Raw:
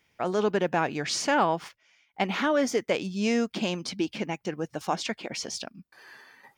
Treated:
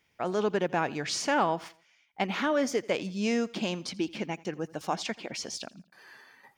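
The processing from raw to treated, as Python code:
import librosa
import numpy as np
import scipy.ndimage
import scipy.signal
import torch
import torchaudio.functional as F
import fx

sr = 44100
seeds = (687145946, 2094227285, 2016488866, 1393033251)

y = fx.echo_feedback(x, sr, ms=83, feedback_pct=42, wet_db=-22)
y = y * librosa.db_to_amplitude(-2.5)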